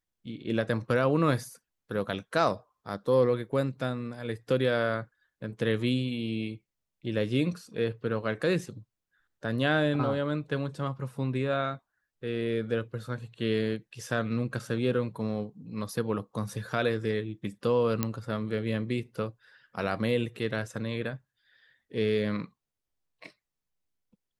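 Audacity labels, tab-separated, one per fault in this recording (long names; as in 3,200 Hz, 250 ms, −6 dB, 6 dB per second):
18.030000	18.030000	click −12 dBFS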